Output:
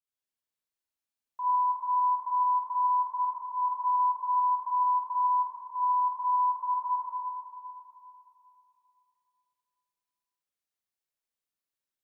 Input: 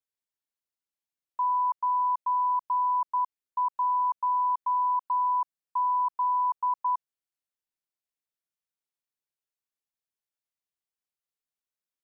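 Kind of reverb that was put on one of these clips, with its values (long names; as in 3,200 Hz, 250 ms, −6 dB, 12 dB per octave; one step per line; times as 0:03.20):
four-comb reverb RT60 2.9 s, combs from 30 ms, DRR −8.5 dB
level −8.5 dB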